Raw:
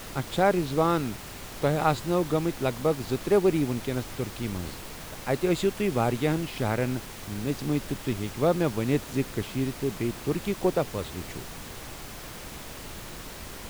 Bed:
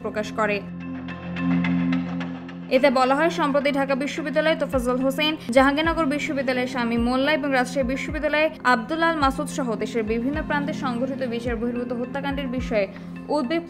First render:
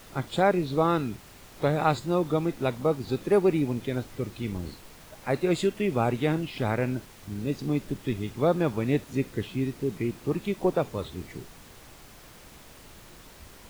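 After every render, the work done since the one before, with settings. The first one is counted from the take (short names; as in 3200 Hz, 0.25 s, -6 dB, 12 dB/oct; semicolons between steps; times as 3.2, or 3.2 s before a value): noise print and reduce 9 dB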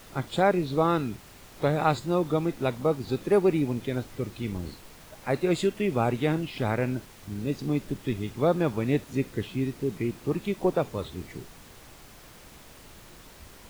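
nothing audible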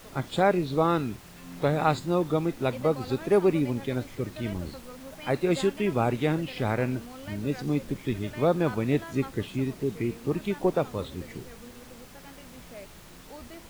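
add bed -22.5 dB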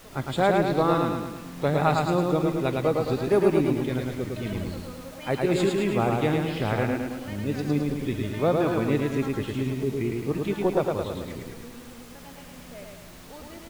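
feedback echo 0.108 s, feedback 54%, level -3 dB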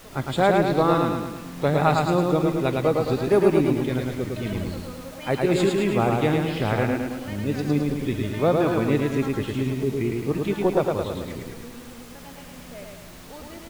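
gain +2.5 dB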